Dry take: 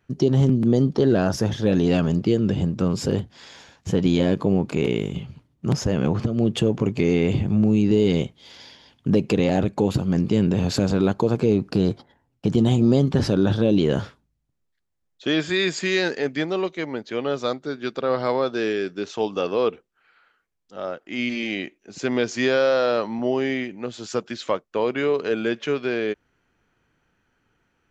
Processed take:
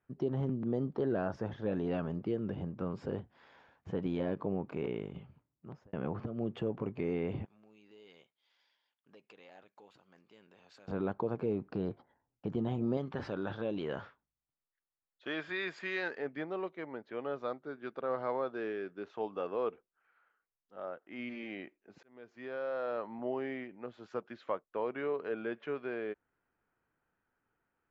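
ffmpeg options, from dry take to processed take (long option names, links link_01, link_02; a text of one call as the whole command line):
ffmpeg -i in.wav -filter_complex "[0:a]asettb=1/sr,asplit=3[link_01][link_02][link_03];[link_01]atrim=end=7.454[link_04];[link_02]atrim=start=7.45:end=10.88,asetpts=PTS-STARTPTS,afade=type=in:duration=0.004:curve=qsin,afade=type=out:start_time=3.426:duration=0.004:curve=qsin,aderivative[link_05];[link_03]atrim=start=10.876[link_06];[link_04][link_05]acrossfade=duration=0.004:curve1=hsin:curve2=qsin[link_07];[link_07][link_06]acrossfade=duration=0.004:curve1=qsin:curve2=hsin,asettb=1/sr,asplit=3[link_08][link_09][link_10];[link_08]atrim=end=12.974[link_11];[link_09]atrim=start=12.97:end=16.18,asetpts=PTS-STARTPTS,afade=type=in:duration=0.004:curve=qsin,afade=type=out:start_time=3.206:duration=0.004:curve=qsin,tiltshelf=frequency=770:gain=-5.5[link_12];[link_10]atrim=start=16.176[link_13];[link_11][link_12]acrossfade=duration=0.004:curve1=hsin:curve2=qsin[link_14];[link_14][link_13]acrossfade=duration=0.004:curve1=qsin:curve2=hsin,asplit=3[link_15][link_16][link_17];[link_15]atrim=end=5.93,asetpts=PTS-STARTPTS,afade=type=out:start_time=5.18:duration=0.75[link_18];[link_16]atrim=start=5.93:end=22.03,asetpts=PTS-STARTPTS,afade=type=in:duration=0.004:curve=hsin,afade=type=out:start_time=16.096:duration=0.004:curve=hsin[link_19];[link_17]atrim=start=22.03,asetpts=PTS-STARTPTS,afade=type=in:duration=1.23[link_20];[link_18][link_19][link_20]concat=n=3:v=0:a=1,lowpass=1400,lowshelf=frequency=460:gain=-10.5,volume=-7.5dB" out.wav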